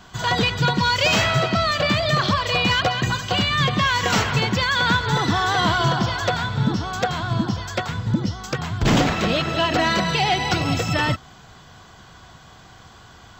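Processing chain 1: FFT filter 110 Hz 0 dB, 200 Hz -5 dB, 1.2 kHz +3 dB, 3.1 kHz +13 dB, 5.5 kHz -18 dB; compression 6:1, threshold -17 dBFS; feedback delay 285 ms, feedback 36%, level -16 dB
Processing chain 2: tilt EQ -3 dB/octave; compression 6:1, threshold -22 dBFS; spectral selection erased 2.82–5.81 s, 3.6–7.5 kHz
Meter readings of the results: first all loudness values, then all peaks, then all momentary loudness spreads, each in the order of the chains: -19.5 LUFS, -26.0 LUFS; -6.5 dBFS, -12.0 dBFS; 7 LU, 16 LU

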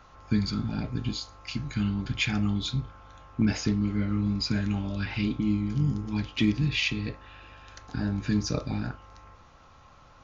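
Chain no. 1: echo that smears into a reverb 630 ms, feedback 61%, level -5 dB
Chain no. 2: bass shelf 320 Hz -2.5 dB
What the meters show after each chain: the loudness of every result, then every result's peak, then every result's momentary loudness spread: -28.0 LUFS, -30.5 LUFS; -13.0 dBFS, -14.5 dBFS; 7 LU, 12 LU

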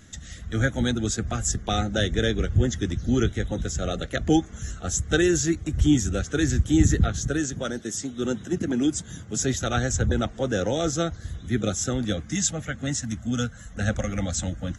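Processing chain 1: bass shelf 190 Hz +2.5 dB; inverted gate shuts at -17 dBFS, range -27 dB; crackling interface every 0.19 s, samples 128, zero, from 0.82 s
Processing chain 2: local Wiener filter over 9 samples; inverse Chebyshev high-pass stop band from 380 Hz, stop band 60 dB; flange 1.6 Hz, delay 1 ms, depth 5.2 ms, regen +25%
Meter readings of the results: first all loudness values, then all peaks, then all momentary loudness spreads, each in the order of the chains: -36.0 LUFS, -37.0 LUFS; -15.0 dBFS, -15.5 dBFS; 19 LU, 14 LU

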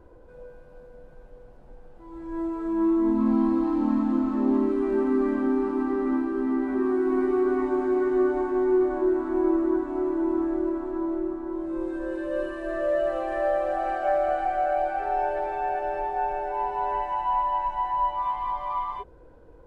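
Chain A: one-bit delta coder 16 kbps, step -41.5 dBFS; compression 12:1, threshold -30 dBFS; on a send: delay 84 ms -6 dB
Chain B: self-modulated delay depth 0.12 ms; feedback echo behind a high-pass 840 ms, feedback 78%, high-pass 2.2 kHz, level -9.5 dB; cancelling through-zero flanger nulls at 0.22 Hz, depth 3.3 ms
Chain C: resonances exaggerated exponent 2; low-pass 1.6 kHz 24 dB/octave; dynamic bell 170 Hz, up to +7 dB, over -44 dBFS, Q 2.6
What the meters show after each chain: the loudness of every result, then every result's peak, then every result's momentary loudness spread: -33.0 LUFS, -28.5 LUFS, -25.5 LUFS; -21.5 dBFS, -13.5 dBFS, -11.0 dBFS; 14 LU, 10 LU, 8 LU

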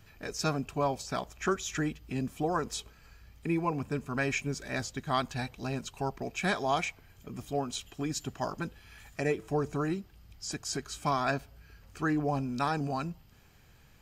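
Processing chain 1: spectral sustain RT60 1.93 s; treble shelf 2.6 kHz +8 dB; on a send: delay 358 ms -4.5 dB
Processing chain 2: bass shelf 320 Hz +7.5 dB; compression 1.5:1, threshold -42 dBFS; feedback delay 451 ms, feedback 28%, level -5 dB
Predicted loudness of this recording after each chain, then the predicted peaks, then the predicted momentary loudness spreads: -25.0 LUFS, -36.0 LUFS; -10.0 dBFS, -18.5 dBFS; 6 LU, 6 LU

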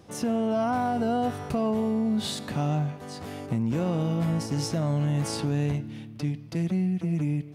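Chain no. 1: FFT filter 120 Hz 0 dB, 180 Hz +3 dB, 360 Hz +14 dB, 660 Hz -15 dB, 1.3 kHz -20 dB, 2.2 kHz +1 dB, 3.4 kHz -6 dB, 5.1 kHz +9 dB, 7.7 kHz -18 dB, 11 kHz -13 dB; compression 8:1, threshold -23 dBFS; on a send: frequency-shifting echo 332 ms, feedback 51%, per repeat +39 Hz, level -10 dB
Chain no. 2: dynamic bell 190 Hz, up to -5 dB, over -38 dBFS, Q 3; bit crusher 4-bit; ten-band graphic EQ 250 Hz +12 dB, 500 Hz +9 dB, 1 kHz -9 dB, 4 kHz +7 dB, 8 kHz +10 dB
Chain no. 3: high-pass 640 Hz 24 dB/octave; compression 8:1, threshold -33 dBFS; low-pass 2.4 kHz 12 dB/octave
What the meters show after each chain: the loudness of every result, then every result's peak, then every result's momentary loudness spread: -27.5 LUFS, -20.5 LUFS, -40.5 LUFS; -13.0 dBFS, -3.5 dBFS, -26.5 dBFS; 4 LU, 10 LU, 14 LU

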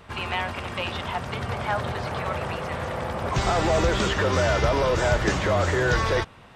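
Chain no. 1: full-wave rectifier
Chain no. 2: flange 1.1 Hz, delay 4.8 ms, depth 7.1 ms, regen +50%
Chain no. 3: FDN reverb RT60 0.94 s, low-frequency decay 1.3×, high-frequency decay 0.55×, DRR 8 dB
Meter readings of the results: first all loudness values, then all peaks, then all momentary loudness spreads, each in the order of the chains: -28.5 LUFS, -28.5 LUFS, -24.0 LUFS; -11.5 dBFS, -14.0 dBFS, -9.0 dBFS; 8 LU, 8 LU, 8 LU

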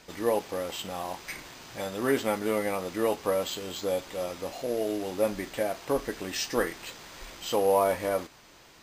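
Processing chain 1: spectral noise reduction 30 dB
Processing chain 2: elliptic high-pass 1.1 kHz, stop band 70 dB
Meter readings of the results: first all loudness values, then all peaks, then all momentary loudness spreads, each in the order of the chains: -33.0 LUFS, -38.0 LUFS; -13.5 dBFS, -18.0 dBFS; 16 LU, 10 LU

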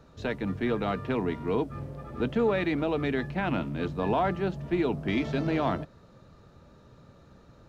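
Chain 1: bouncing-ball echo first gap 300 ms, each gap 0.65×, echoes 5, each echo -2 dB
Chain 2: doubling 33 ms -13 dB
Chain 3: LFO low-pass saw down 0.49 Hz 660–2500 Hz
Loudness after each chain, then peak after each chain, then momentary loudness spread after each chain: -25.5 LUFS, -29.0 LUFS, -28.0 LUFS; -10.5 dBFS, -14.0 dBFS, -10.5 dBFS; 6 LU, 7 LU, 7 LU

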